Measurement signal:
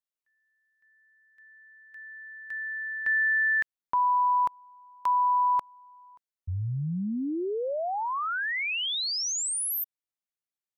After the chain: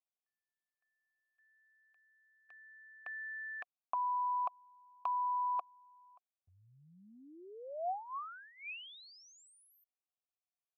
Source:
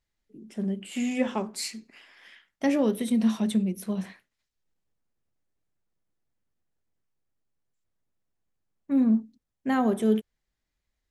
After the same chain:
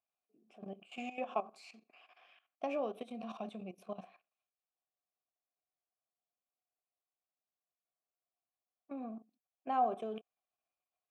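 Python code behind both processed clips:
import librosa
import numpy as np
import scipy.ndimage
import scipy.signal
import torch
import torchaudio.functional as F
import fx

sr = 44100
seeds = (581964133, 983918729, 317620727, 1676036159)

y = fx.level_steps(x, sr, step_db=14)
y = fx.vowel_filter(y, sr, vowel='a')
y = y * 10.0 ** (8.0 / 20.0)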